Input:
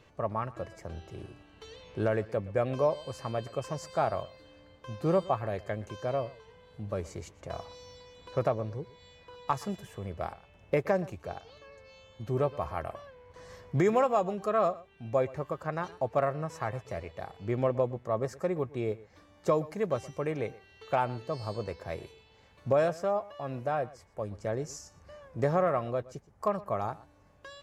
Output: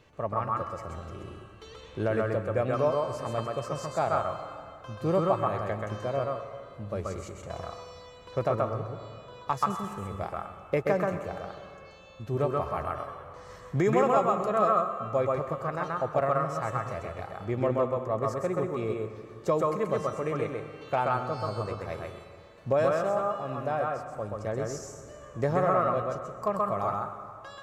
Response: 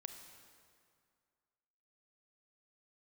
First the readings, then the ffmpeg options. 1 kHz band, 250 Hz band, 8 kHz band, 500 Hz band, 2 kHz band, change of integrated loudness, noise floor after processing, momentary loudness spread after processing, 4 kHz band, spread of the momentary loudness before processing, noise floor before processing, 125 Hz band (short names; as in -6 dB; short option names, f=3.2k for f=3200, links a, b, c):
+4.5 dB, +2.0 dB, n/a, +2.0 dB, +3.0 dB, +2.5 dB, -49 dBFS, 17 LU, +1.5 dB, 18 LU, -60 dBFS, +2.0 dB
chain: -filter_complex "[0:a]asplit=2[a][b];[b]equalizer=f=1.25k:t=o:w=0.33:g=12,equalizer=f=5k:t=o:w=0.33:g=-10,equalizer=f=8k:t=o:w=0.33:g=4[c];[1:a]atrim=start_sample=2205,adelay=131[d];[c][d]afir=irnorm=-1:irlink=0,volume=2dB[e];[a][e]amix=inputs=2:normalize=0"